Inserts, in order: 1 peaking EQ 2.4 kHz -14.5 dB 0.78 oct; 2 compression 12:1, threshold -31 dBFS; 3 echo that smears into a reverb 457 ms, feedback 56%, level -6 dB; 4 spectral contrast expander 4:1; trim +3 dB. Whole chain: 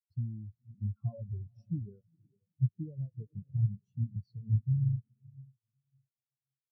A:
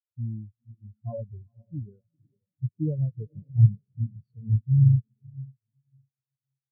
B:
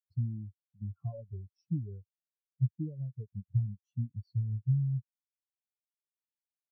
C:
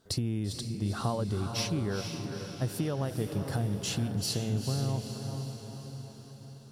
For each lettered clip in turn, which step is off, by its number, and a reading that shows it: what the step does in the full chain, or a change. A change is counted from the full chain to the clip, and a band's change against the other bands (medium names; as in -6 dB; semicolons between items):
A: 2, mean gain reduction 8.0 dB; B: 3, momentary loudness spread change -2 LU; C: 4, crest factor change -3.0 dB